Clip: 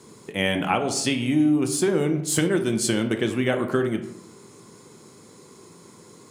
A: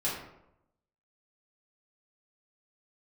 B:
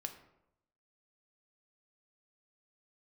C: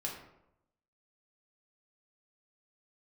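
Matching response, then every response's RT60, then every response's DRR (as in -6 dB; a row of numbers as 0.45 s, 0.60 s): B; 0.85 s, 0.85 s, 0.85 s; -8.5 dB, 5.5 dB, -2.5 dB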